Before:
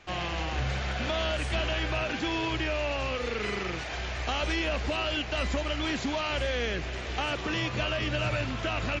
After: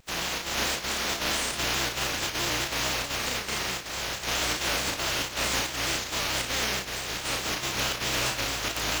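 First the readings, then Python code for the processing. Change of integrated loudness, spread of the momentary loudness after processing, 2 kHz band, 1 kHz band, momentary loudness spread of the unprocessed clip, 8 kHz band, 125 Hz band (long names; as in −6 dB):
+2.5 dB, 3 LU, +2.0 dB, +1.5 dB, 3 LU, +16.0 dB, −6.0 dB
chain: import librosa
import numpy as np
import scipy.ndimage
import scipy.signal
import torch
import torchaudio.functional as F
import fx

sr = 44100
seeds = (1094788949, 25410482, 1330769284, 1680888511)

y = fx.spec_flatten(x, sr, power=0.25)
y = fx.volume_shaper(y, sr, bpm=159, per_beat=1, depth_db=-12, release_ms=81.0, shape='slow start')
y = fx.room_early_taps(y, sr, ms=(34, 56), db=(-3.5, -8.5))
y = fx.vibrato_shape(y, sr, shape='square', rate_hz=4.6, depth_cents=100.0)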